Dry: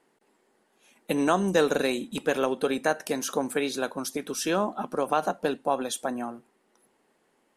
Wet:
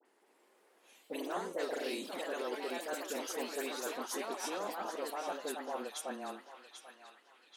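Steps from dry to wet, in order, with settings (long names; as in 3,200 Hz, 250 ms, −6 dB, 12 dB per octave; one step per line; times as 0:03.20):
high-pass filter 300 Hz 24 dB per octave
reversed playback
downward compressor 4 to 1, threshold −37 dBFS, peak gain reduction 16.5 dB
reversed playback
delay with pitch and tempo change per echo 160 ms, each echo +2 semitones, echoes 3
all-pass dispersion highs, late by 54 ms, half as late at 1,900 Hz
frequency shifter −15 Hz
on a send: feedback echo with a band-pass in the loop 789 ms, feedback 55%, band-pass 2,800 Hz, level −6.5 dB
on the sum: level −2.5 dB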